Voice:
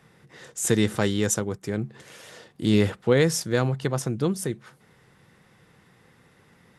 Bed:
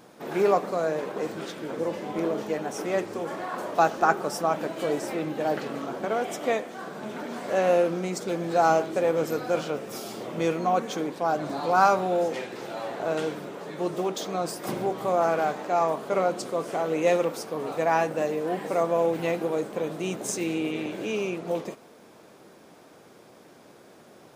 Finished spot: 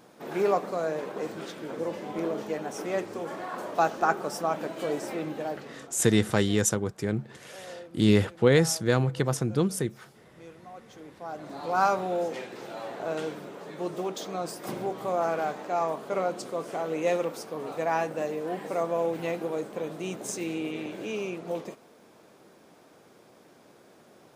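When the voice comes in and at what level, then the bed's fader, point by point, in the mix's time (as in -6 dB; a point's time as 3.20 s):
5.35 s, -0.5 dB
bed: 5.32 s -3 dB
6.14 s -22.5 dB
10.71 s -22.5 dB
11.81 s -4 dB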